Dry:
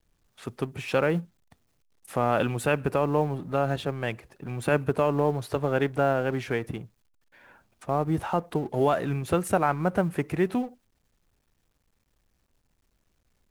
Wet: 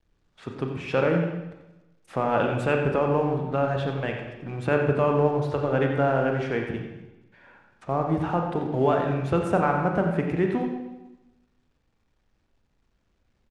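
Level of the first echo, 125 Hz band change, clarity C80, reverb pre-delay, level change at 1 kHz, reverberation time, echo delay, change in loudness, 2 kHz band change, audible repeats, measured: −9.5 dB, +2.5 dB, 5.0 dB, 29 ms, +1.5 dB, 1.0 s, 89 ms, +2.0 dB, +1.5 dB, 1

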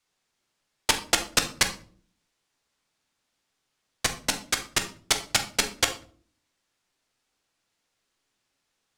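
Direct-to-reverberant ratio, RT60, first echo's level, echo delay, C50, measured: 5.0 dB, 0.45 s, no echo audible, no echo audible, 11.5 dB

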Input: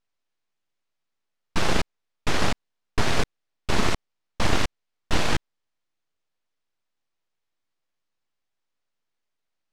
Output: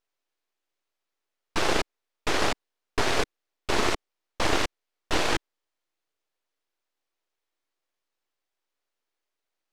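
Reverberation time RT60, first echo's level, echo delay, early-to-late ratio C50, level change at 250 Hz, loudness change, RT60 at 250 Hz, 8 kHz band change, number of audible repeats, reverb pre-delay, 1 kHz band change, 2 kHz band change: no reverb audible, no echo audible, no echo audible, no reverb audible, −2.5 dB, −0.5 dB, no reverb audible, 0.0 dB, no echo audible, no reverb audible, +0.5 dB, 0.0 dB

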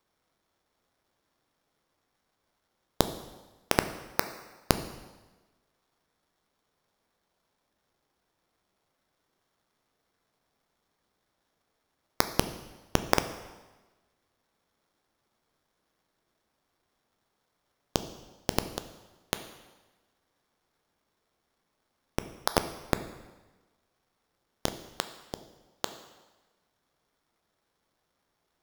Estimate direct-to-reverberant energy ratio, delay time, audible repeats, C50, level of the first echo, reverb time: 9.0 dB, no echo audible, no echo audible, 11.5 dB, no echo audible, 1.2 s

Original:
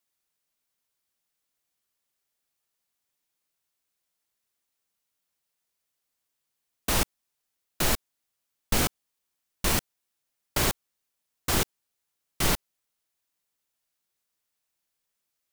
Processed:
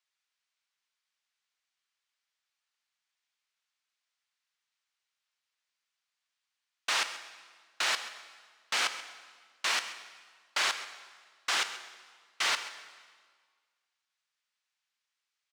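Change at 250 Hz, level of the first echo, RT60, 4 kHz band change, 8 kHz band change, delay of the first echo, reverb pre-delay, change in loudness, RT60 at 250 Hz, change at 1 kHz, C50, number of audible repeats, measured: −23.0 dB, −15.5 dB, 1.7 s, +1.0 dB, −6.0 dB, 133 ms, 14 ms, −3.5 dB, 1.7 s, −1.5 dB, 10.5 dB, 1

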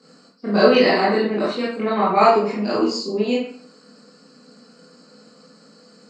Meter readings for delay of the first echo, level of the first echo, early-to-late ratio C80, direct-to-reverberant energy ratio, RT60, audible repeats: no echo audible, no echo audible, 6.5 dB, −8.0 dB, 0.55 s, no echo audible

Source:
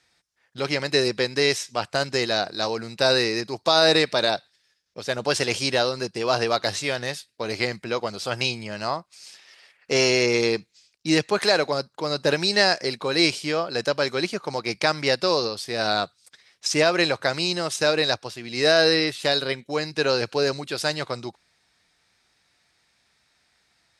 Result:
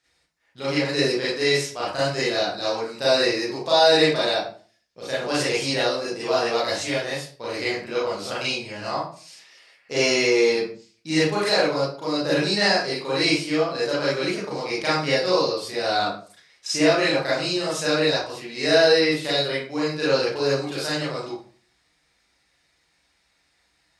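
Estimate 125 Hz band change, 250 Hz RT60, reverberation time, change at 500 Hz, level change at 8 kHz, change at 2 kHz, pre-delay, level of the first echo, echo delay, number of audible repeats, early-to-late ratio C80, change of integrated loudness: +0.5 dB, 0.50 s, 0.45 s, +1.5 dB, −0.5 dB, 0.0 dB, 31 ms, no echo audible, no echo audible, no echo audible, 7.0 dB, +0.5 dB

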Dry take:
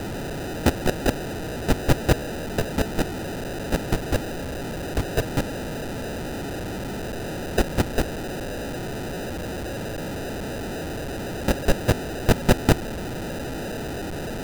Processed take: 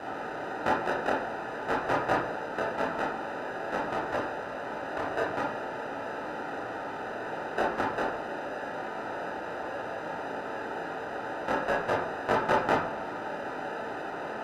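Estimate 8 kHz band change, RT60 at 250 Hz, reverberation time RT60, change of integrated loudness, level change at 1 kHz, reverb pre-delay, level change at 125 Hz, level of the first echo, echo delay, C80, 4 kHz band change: −18.5 dB, 0.65 s, 0.55 s, −5.0 dB, +3.0 dB, 20 ms, −18.5 dB, no echo audible, no echo audible, 8.0 dB, −11.0 dB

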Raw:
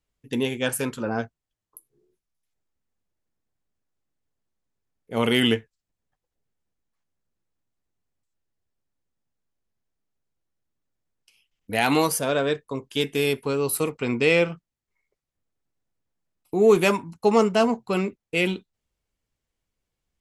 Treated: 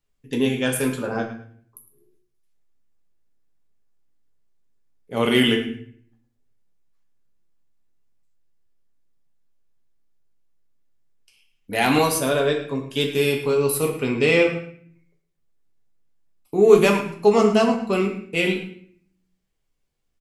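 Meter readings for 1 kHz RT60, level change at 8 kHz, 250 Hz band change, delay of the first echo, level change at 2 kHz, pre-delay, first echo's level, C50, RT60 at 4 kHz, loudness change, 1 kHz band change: 0.50 s, +2.0 dB, +3.0 dB, 108 ms, +2.5 dB, 5 ms, −14.0 dB, 7.5 dB, 0.50 s, +3.0 dB, +2.0 dB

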